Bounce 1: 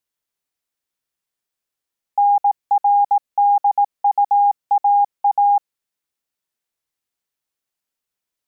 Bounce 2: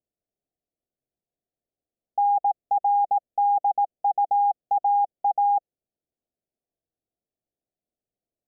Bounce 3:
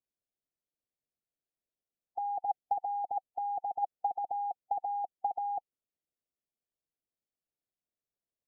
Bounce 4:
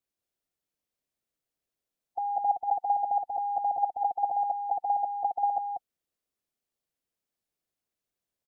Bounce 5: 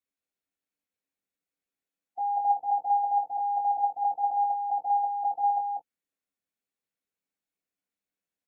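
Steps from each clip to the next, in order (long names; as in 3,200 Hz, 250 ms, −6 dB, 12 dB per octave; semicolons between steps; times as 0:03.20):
elliptic low-pass filter 720 Hz, stop band 40 dB; level +3.5 dB
harmonic and percussive parts rebalanced harmonic −9 dB; level −5 dB
single-tap delay 187 ms −3 dB; level +3.5 dB
convolution reverb, pre-delay 3 ms, DRR −2 dB; level −8 dB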